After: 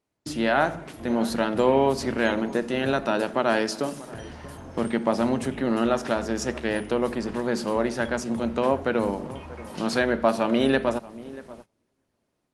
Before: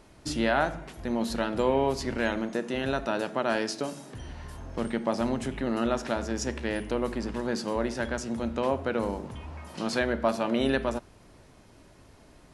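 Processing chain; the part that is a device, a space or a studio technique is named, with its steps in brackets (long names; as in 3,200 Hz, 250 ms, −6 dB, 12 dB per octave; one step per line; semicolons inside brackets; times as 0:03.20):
feedback echo with a low-pass in the loop 635 ms, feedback 18%, low-pass 1,400 Hz, level −17 dB
0:06.09–0:08.18: dynamic equaliser 280 Hz, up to −5 dB, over −50 dBFS, Q 6.4
video call (high-pass filter 100 Hz 12 dB per octave; automatic gain control gain up to 5 dB; noise gate −43 dBFS, range −24 dB; Opus 24 kbit/s 48,000 Hz)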